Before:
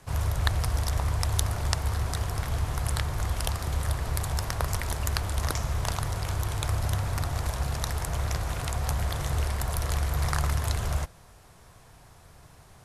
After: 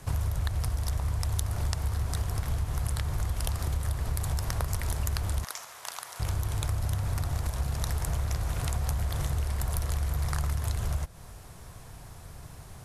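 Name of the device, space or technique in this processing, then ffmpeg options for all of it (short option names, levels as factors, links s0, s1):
ASMR close-microphone chain: -filter_complex "[0:a]lowshelf=f=250:g=6.5,acompressor=threshold=0.0355:ratio=6,highshelf=f=7500:g=6,asettb=1/sr,asplit=3[s0][s1][s2];[s0]atrim=end=5.444[s3];[s1]atrim=start=5.44:end=6.2,asetpts=PTS-STARTPTS,afade=t=in:d=0.004:c=qsin,afade=t=out:st=0.756:d=0.004:c=qsin,highpass=880[s4];[s2]atrim=start=6.196[s5];[s3][s4]acrossfade=d=0.004:c1=hsin:c2=qsin[s6];[s6][s5]acrossfade=d=0.004:c1=qsin:c2=hsin,volume=1.33"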